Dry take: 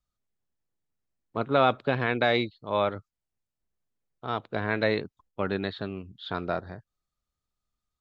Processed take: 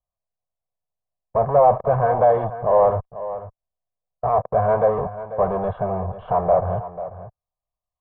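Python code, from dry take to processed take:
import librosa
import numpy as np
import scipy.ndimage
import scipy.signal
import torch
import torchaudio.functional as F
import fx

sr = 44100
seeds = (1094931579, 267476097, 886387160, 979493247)

p1 = fx.fuzz(x, sr, gain_db=48.0, gate_db=-51.0)
p2 = x + (p1 * librosa.db_to_amplitude(-4.5))
p3 = fx.peak_eq(p2, sr, hz=330.0, db=-12.5, octaves=1.0)
p4 = p3 + 0.66 * np.pad(p3, (int(1.8 * sr / 1000.0), 0))[:len(p3)]
p5 = fx.formant_shift(p4, sr, semitones=-2)
p6 = fx.ladder_lowpass(p5, sr, hz=850.0, resonance_pct=70)
p7 = fx.low_shelf(p6, sr, hz=110.0, db=-6.5)
p8 = p7 + fx.echo_single(p7, sr, ms=491, db=-13.5, dry=0)
y = p8 * librosa.db_to_amplitude(8.5)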